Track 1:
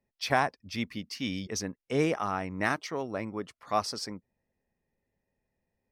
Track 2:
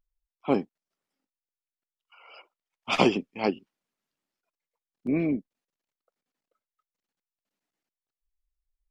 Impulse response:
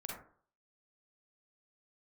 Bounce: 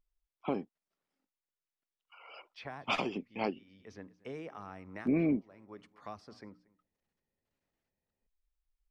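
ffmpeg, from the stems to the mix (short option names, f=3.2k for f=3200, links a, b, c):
-filter_complex "[0:a]bandreject=f=60:t=h:w=6,bandreject=f=120:t=h:w=6,bandreject=f=180:t=h:w=6,bandreject=f=240:t=h:w=6,bandreject=f=300:t=h:w=6,acrossover=split=290|3500[a][b][c];[a]acompressor=threshold=-43dB:ratio=4[d];[b]acompressor=threshold=-36dB:ratio=4[e];[c]acompressor=threshold=-58dB:ratio=4[f];[d][e][f]amix=inputs=3:normalize=0,adelay=2350,volume=-8dB,asplit=3[g][h][i];[h]volume=-24dB[j];[i]volume=-22.5dB[k];[1:a]acompressor=threshold=-24dB:ratio=6,volume=-0.5dB,asplit=2[l][m];[m]apad=whole_len=364662[n];[g][n]sidechaincompress=threshold=-51dB:ratio=4:attack=8.4:release=277[o];[2:a]atrim=start_sample=2205[p];[j][p]afir=irnorm=-1:irlink=0[q];[k]aecho=0:1:233:1[r];[o][l][q][r]amix=inputs=4:normalize=0,highshelf=f=5.7k:g=-10,alimiter=limit=-19.5dB:level=0:latency=1:release=454"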